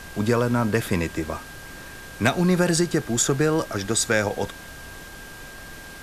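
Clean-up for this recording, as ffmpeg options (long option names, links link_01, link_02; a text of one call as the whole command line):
ffmpeg -i in.wav -af "bandreject=frequency=1600:width=30,afftdn=noise_reduction=28:noise_floor=-40" out.wav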